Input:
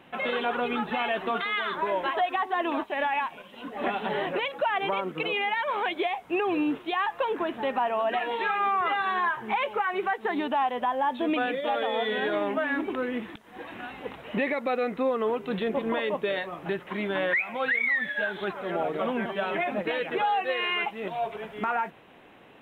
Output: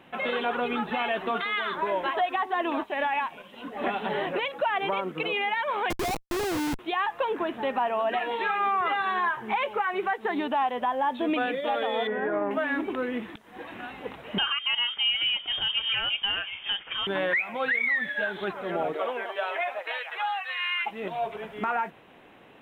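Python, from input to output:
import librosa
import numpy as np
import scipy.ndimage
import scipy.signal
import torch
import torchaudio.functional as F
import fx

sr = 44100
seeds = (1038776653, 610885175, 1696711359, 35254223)

y = fx.schmitt(x, sr, flips_db=-28.5, at=(5.9, 6.79))
y = fx.lowpass(y, sr, hz=1800.0, slope=24, at=(12.07, 12.51))
y = fx.freq_invert(y, sr, carrier_hz=3400, at=(14.38, 17.07))
y = fx.highpass(y, sr, hz=fx.line((18.93, 350.0), (20.85, 1300.0)), slope=24, at=(18.93, 20.85), fade=0.02)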